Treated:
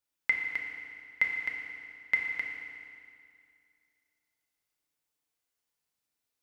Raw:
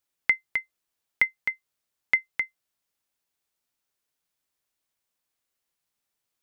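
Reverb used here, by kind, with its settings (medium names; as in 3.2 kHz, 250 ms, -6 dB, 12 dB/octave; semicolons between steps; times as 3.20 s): FDN reverb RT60 2.3 s, low-frequency decay 1.1×, high-frequency decay 0.95×, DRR -0.5 dB; trim -6 dB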